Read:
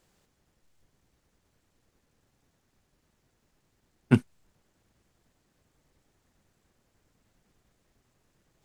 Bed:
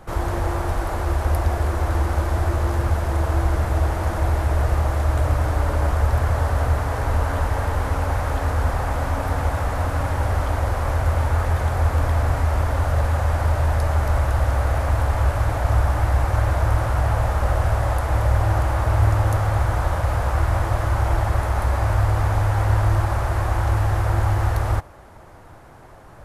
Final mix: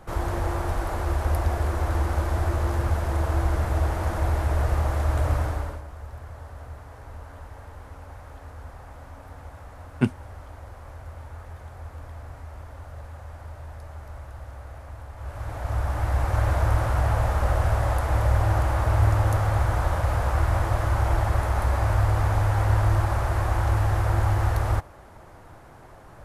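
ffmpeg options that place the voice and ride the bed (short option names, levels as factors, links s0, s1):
-filter_complex "[0:a]adelay=5900,volume=0.891[s0];[1:a]volume=5.01,afade=t=out:st=5.36:d=0.47:silence=0.149624,afade=t=in:st=15.16:d=1.34:silence=0.133352[s1];[s0][s1]amix=inputs=2:normalize=0"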